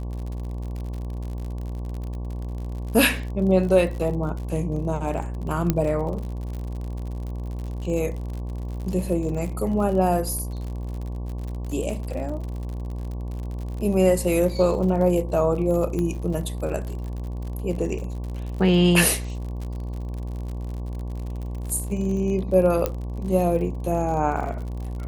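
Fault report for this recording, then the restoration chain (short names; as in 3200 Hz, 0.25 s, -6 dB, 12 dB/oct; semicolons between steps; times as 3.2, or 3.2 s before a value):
buzz 60 Hz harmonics 19 -30 dBFS
crackle 59/s -32 dBFS
5.7 pop -7 dBFS
15.99 pop -16 dBFS
22.86 pop -9 dBFS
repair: de-click; de-hum 60 Hz, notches 19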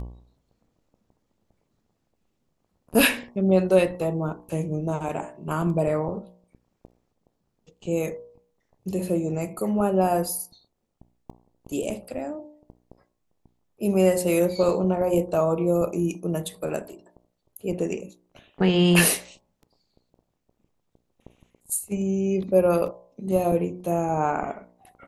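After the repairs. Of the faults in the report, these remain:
5.7 pop
15.99 pop
22.86 pop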